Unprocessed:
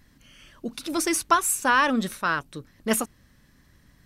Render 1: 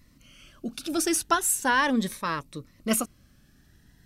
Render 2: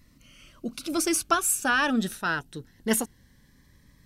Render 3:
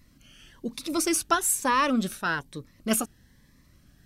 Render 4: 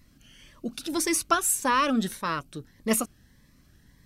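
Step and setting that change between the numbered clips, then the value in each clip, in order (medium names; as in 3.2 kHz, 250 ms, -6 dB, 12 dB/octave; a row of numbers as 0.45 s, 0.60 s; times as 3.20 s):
Shepard-style phaser, rate: 0.38 Hz, 0.21 Hz, 1.1 Hz, 1.7 Hz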